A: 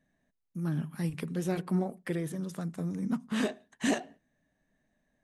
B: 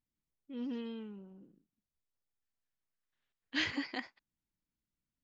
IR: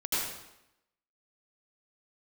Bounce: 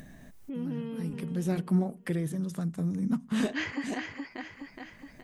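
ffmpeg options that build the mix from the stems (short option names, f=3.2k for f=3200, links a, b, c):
-filter_complex "[0:a]bass=f=250:g=7,treble=f=4k:g=2,volume=-1.5dB[a];[1:a]equalizer=f=3.9k:t=o:w=0.79:g=-13,volume=3dB,asplit=3[b][c][d];[c]volume=-7.5dB[e];[d]apad=whole_len=231037[f];[a][f]sidechaincompress=threshold=-51dB:ratio=3:attack=16:release=150[g];[e]aecho=0:1:419|838|1257|1676:1|0.28|0.0784|0.022[h];[g][b][h]amix=inputs=3:normalize=0,acompressor=mode=upward:threshold=-31dB:ratio=2.5"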